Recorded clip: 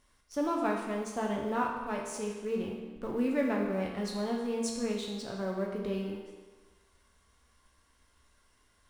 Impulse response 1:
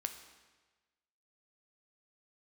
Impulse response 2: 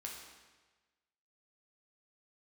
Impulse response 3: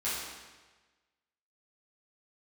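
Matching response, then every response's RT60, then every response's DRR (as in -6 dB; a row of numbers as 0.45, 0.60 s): 2; 1.3, 1.3, 1.3 s; 6.5, -1.5, -11.0 dB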